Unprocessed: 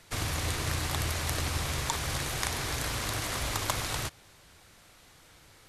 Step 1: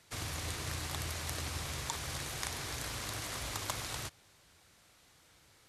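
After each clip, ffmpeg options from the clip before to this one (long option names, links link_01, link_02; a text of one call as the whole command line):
ffmpeg -i in.wav -af "highpass=44,equalizer=frequency=6400:width=0.57:gain=2.5,volume=-8dB" out.wav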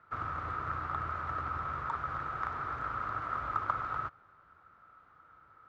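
ffmpeg -i in.wav -af "lowpass=frequency=1300:width_type=q:width=14,volume=-2.5dB" out.wav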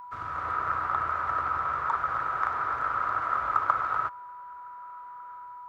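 ffmpeg -i in.wav -filter_complex "[0:a]acrossover=split=410|2000[link_01][link_02][link_03];[link_02]dynaudnorm=framelen=140:gausssize=5:maxgain=11dB[link_04];[link_01][link_04][link_03]amix=inputs=3:normalize=0,aeval=exprs='val(0)+0.0126*sin(2*PI*980*n/s)':channel_layout=same,crystalizer=i=3:c=0,volume=-3.5dB" out.wav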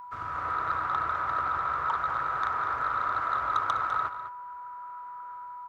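ffmpeg -i in.wav -filter_complex "[0:a]asoftclip=type=tanh:threshold=-17.5dB,asplit=2[link_01][link_02];[link_02]aecho=0:1:202:0.282[link_03];[link_01][link_03]amix=inputs=2:normalize=0" out.wav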